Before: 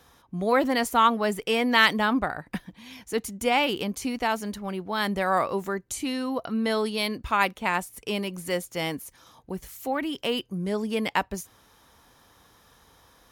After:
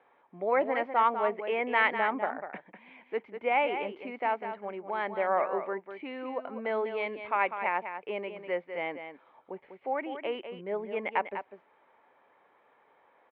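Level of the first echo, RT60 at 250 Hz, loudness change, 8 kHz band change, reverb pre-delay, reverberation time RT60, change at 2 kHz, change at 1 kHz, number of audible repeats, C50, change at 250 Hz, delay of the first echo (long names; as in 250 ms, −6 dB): −9.0 dB, no reverb audible, −5.0 dB, below −40 dB, no reverb audible, no reverb audible, −5.0 dB, −3.5 dB, 1, no reverb audible, −13.0 dB, 198 ms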